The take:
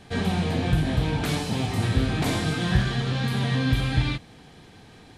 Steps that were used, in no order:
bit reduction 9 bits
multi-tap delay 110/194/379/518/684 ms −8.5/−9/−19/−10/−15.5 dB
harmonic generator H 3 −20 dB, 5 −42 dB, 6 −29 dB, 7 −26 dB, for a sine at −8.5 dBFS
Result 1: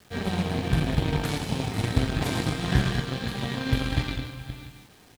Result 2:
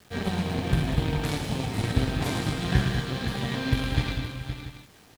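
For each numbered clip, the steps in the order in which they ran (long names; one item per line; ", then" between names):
multi-tap delay, then harmonic generator, then bit reduction
harmonic generator, then bit reduction, then multi-tap delay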